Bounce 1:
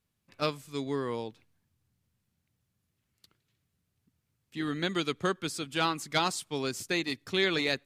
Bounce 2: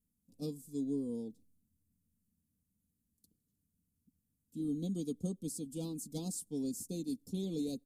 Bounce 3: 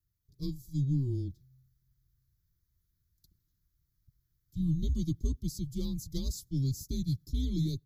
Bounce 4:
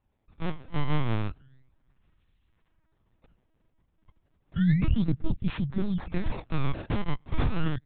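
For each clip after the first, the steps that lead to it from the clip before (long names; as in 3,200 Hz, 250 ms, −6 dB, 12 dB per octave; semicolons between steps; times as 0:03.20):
Chebyshev band-stop filter 260–9,300 Hz, order 2; comb filter 4.1 ms, depth 66%; level −1.5 dB
automatic gain control gain up to 4.5 dB; frequency shifter −130 Hz; phaser with its sweep stopped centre 2,700 Hz, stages 6; level +3 dB
sample-and-hold swept by an LFO 24×, swing 160% 0.32 Hz; linear-prediction vocoder at 8 kHz pitch kept; level +7 dB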